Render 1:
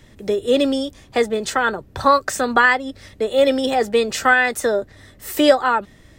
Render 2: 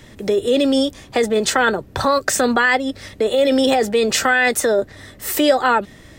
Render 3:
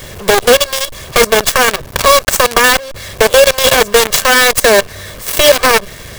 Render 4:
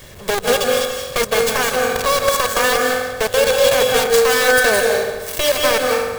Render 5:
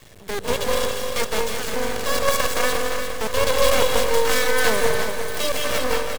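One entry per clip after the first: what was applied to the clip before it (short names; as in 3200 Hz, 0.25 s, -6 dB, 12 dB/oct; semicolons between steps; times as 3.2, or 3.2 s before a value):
dynamic EQ 1100 Hz, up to -6 dB, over -27 dBFS, Q 1.4; in parallel at 0 dB: negative-ratio compressor -21 dBFS, ratio -0.5; on the sum: low shelf 88 Hz -6.5 dB; gain -1 dB
minimum comb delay 1.8 ms; in parallel at +2 dB: compressor 4:1, threshold -27 dBFS, peak gain reduction 14.5 dB; on the sum: companded quantiser 2-bit; gain -1 dB
reverb RT60 1.3 s, pre-delay 0.153 s, DRR -0.5 dB; gain -10 dB
rotary speaker horn 0.75 Hz, later 5.5 Hz, at 3.92; half-wave rectifier; feedback echo 0.351 s, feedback 51%, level -8 dB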